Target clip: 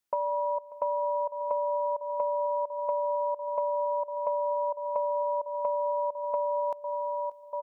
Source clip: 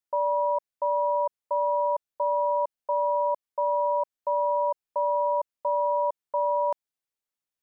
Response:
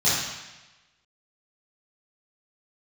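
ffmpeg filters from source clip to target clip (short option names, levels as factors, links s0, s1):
-filter_complex "[0:a]asplit=2[s0][s1];[s1]aecho=0:1:1192:0.224[s2];[s0][s2]amix=inputs=2:normalize=0,acompressor=threshold=0.0224:ratio=6,aecho=1:1:589:0.0944,asplit=2[s3][s4];[1:a]atrim=start_sample=2205,adelay=144[s5];[s4][s5]afir=irnorm=-1:irlink=0,volume=0.0168[s6];[s3][s6]amix=inputs=2:normalize=0,volume=1.88"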